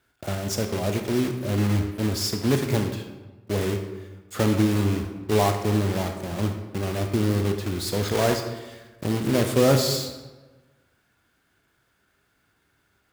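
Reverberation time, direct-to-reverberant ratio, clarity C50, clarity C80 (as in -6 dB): 1.2 s, 5.0 dB, 6.5 dB, 9.0 dB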